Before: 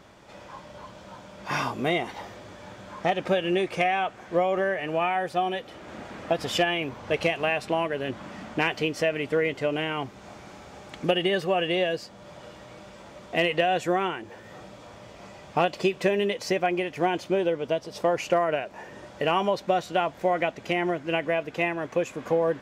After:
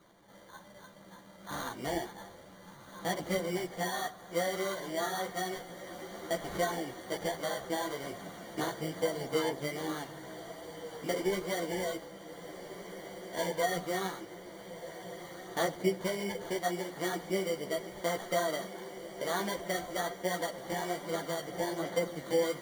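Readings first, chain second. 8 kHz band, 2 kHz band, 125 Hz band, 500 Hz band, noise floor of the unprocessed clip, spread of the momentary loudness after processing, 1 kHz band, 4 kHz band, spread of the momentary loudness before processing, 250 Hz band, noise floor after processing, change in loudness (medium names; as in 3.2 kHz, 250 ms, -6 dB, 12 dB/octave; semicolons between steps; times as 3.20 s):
+3.0 dB, -9.5 dB, -7.5 dB, -8.0 dB, -47 dBFS, 14 LU, -9.5 dB, -8.0 dB, 20 LU, -7.5 dB, -54 dBFS, -9.0 dB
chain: knee-point frequency compression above 1.2 kHz 1.5:1; high-pass 100 Hz; sample-and-hold 17×; echo that smears into a reverb 1510 ms, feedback 67%, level -12.5 dB; simulated room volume 2900 m³, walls furnished, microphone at 0.76 m; chorus voices 4, 1.2 Hz, delay 13 ms, depth 3 ms; trim -6.5 dB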